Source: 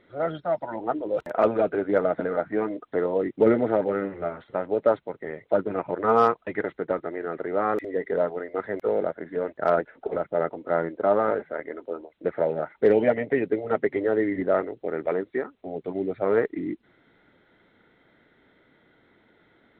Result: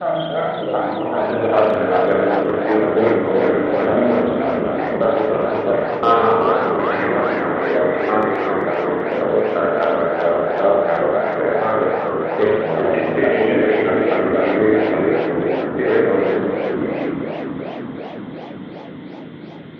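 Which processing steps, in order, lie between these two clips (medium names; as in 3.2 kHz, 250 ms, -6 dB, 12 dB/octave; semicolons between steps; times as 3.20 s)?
slices played last to first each 147 ms, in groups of 4; peaking EQ 3.3 kHz +12.5 dB 1.1 oct; in parallel at +2 dB: compression, threshold -29 dBFS, peak gain reduction 15 dB; on the sum: band noise 140–360 Hz -41 dBFS; on a send: band-passed feedback delay 671 ms, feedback 71%, band-pass 780 Hz, level -16 dB; on the sum: spring tank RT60 1.2 s, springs 37 ms, chirp 55 ms, DRR -3.5 dB; modulated delay 381 ms, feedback 71%, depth 208 cents, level -6 dB; trim -2.5 dB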